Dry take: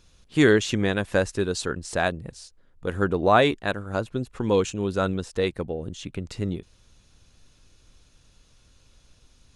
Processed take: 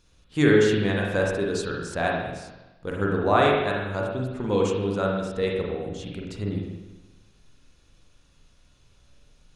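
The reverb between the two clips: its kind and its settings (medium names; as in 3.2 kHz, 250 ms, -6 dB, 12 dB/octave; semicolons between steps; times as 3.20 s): spring tank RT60 1.1 s, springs 40/47 ms, chirp 35 ms, DRR -2 dB; trim -4.5 dB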